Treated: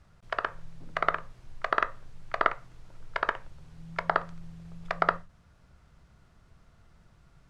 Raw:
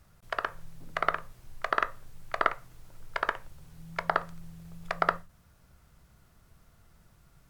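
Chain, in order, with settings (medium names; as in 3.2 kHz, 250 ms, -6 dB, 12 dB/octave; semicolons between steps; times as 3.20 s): distance through air 77 m; trim +1.5 dB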